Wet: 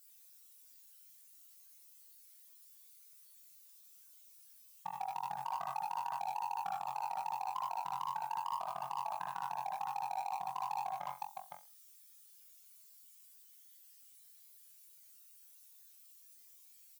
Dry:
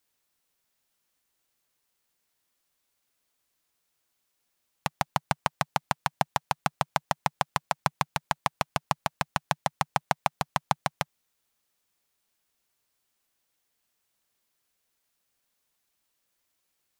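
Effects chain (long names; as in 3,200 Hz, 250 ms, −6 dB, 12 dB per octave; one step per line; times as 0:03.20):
expanding power law on the bin magnitudes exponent 3.3
flutter between parallel walls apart 3.8 metres, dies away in 0.26 s
in parallel at −7 dB: hard clipping −23 dBFS, distortion −7 dB
on the sum: low shelf with overshoot 180 Hz −11 dB, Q 1.5
on a send: multi-tap delay 73/81/96/510 ms −10.5/−11.5/−11/−10 dB
on the sum: brickwall limiter −19.5 dBFS, peak gain reduction 11 dB
first-order pre-emphasis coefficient 0.97
level +9 dB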